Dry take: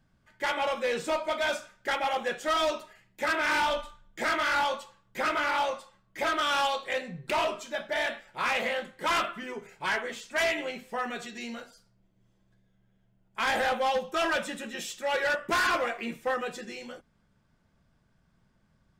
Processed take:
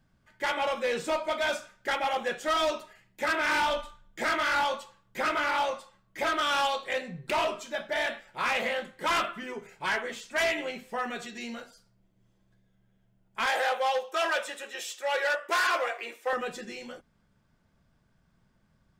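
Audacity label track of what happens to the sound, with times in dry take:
13.460000	16.330000	high-pass 410 Hz 24 dB/octave

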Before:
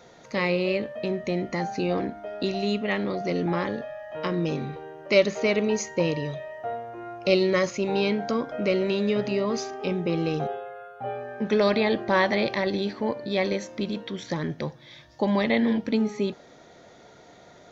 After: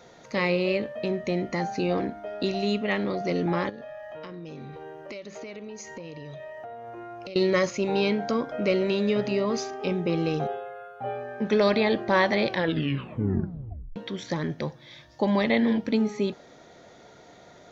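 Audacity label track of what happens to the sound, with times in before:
3.690000	7.360000	compression 10:1, threshold -36 dBFS
12.470000	12.470000	tape stop 1.49 s

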